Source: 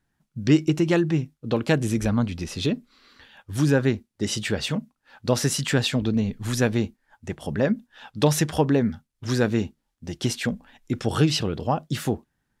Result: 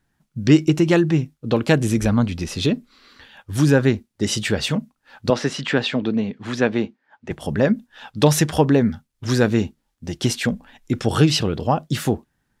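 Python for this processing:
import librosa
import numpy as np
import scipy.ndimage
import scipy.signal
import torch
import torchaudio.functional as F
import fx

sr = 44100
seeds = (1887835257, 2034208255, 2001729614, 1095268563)

y = fx.bandpass_edges(x, sr, low_hz=210.0, high_hz=3400.0, at=(5.3, 7.31))
y = y * 10.0 ** (4.5 / 20.0)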